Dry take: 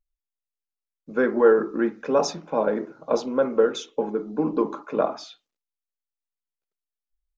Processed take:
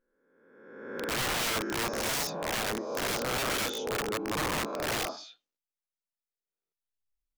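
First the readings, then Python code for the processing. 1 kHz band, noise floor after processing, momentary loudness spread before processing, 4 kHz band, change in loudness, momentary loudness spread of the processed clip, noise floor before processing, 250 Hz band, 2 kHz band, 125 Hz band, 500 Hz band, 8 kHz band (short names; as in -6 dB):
-3.5 dB, under -85 dBFS, 9 LU, +6.5 dB, -7.0 dB, 8 LU, under -85 dBFS, -11.0 dB, +2.0 dB, +0.5 dB, -13.0 dB, n/a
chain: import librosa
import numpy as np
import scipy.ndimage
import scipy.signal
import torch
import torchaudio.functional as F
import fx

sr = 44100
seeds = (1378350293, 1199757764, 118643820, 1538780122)

y = fx.spec_swells(x, sr, rise_s=1.25)
y = (np.mod(10.0 ** (17.0 / 20.0) * y + 1.0, 2.0) - 1.0) / 10.0 ** (17.0 / 20.0)
y = y * librosa.db_to_amplitude(-8.5)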